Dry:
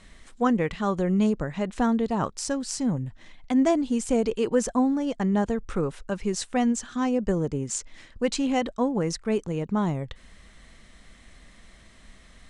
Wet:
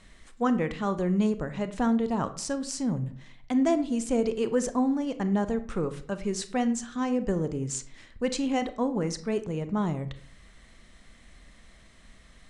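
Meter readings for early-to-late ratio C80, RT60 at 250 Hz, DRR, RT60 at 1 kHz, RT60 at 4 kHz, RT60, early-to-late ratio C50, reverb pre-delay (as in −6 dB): 17.5 dB, 0.65 s, 11.0 dB, 0.50 s, 0.30 s, 0.55 s, 14.5 dB, 27 ms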